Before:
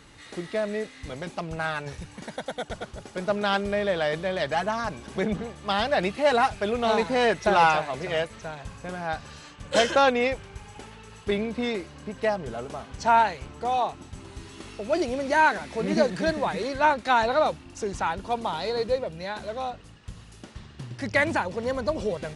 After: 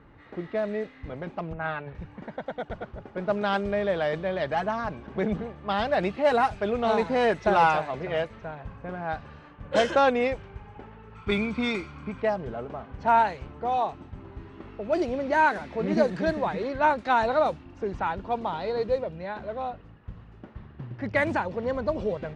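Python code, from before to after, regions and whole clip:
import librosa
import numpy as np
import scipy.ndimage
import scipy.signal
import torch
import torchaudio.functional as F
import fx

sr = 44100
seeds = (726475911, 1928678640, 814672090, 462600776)

y = fx.chain(x, sr, fx.lowpass(hz=3700.0, slope=24),
    fx.band_widen(depth_pct=70), at=(1.53, 1.95))
y = fx.chain(y, sr, fx.high_shelf(hz=3000.0, db=10.5),
    fx.comb(ms=0.9, depth=0.49),
    fx.small_body(hz=(1400.0, 2400.0), ring_ms=25, db=11), at=(11.15, 12.22))
y = fx.env_lowpass(y, sr, base_hz=1700.0, full_db=-17.0)
y = fx.high_shelf(y, sr, hz=2700.0, db=-10.0)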